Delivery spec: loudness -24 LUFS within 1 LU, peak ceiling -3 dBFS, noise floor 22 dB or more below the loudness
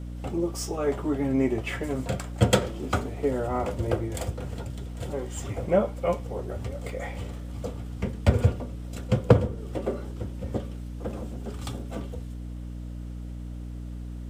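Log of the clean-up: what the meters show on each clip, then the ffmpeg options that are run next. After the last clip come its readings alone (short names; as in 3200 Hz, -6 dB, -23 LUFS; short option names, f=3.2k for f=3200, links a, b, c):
hum 60 Hz; harmonics up to 300 Hz; hum level -35 dBFS; loudness -29.5 LUFS; peak -4.5 dBFS; loudness target -24.0 LUFS
-> -af "bandreject=f=60:t=h:w=6,bandreject=f=120:t=h:w=6,bandreject=f=180:t=h:w=6,bandreject=f=240:t=h:w=6,bandreject=f=300:t=h:w=6"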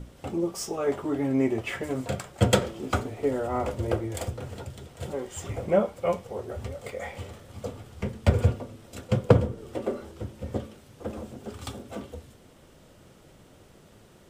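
hum none; loudness -29.5 LUFS; peak -4.5 dBFS; loudness target -24.0 LUFS
-> -af "volume=5.5dB,alimiter=limit=-3dB:level=0:latency=1"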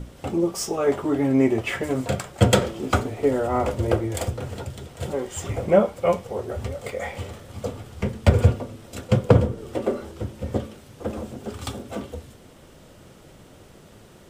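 loudness -24.5 LUFS; peak -3.0 dBFS; noise floor -49 dBFS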